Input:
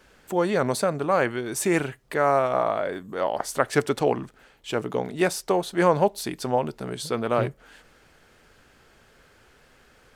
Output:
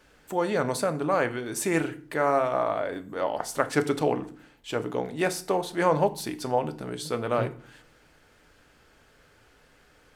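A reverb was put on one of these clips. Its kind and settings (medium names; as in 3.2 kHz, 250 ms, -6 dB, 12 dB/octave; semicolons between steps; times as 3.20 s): FDN reverb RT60 0.47 s, low-frequency decay 1.55×, high-frequency decay 0.85×, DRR 9.5 dB; trim -3 dB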